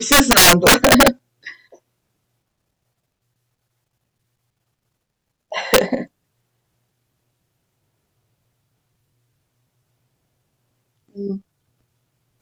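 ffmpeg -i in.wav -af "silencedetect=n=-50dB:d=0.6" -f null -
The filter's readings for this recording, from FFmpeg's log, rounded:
silence_start: 1.78
silence_end: 5.52 | silence_duration: 3.73
silence_start: 6.07
silence_end: 11.09 | silence_duration: 5.01
silence_start: 11.42
silence_end: 12.42 | silence_duration: 1.00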